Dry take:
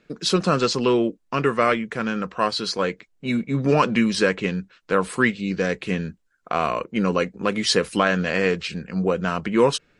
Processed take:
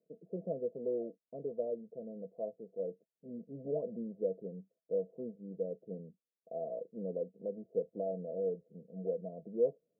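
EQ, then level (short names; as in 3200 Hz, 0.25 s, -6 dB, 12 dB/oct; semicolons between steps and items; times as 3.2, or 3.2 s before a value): rippled Chebyshev low-pass 680 Hz, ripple 9 dB; differentiator; low shelf 130 Hz -7 dB; +14.0 dB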